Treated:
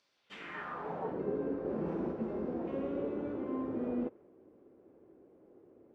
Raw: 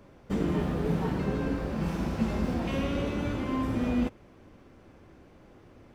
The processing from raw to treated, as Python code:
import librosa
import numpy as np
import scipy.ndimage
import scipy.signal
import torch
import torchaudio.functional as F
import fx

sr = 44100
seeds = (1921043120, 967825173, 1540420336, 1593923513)

y = fx.filter_sweep_bandpass(x, sr, from_hz=4600.0, to_hz=400.0, start_s=0.13, end_s=1.22, q=2.4)
y = fx.dynamic_eq(y, sr, hz=1400.0, q=0.74, threshold_db=-58.0, ratio=4.0, max_db=5)
y = fx.env_flatten(y, sr, amount_pct=50, at=(1.64, 2.11), fade=0.02)